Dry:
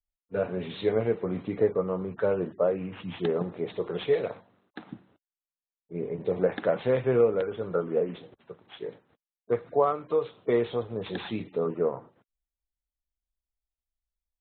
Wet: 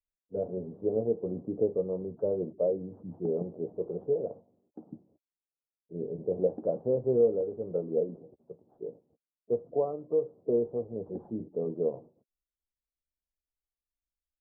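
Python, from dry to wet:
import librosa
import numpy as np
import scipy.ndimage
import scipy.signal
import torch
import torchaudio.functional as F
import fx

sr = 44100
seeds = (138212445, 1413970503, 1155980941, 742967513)

y = scipy.signal.sosfilt(scipy.signal.cheby2(4, 60, 2100.0, 'lowpass', fs=sr, output='sos'), x)
y = fx.low_shelf(y, sr, hz=120.0, db=-6.0)
y = fx.doubler(y, sr, ms=13.0, db=-13)
y = y * 10.0 ** (-2.0 / 20.0)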